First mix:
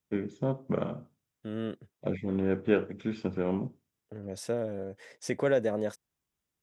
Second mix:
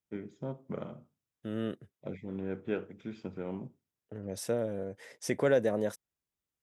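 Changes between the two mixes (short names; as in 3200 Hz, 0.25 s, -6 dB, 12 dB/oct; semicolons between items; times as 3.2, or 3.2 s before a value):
first voice -8.5 dB; second voice: remove LPF 8700 Hz 12 dB/oct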